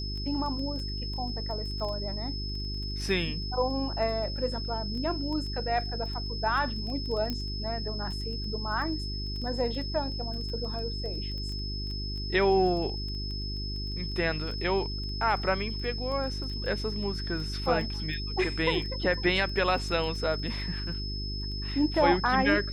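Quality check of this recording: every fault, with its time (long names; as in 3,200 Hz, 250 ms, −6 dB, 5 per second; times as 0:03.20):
surface crackle 10 per second −35 dBFS
mains hum 50 Hz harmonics 8 −35 dBFS
whistle 5,200 Hz −37 dBFS
0:07.30: click −18 dBFS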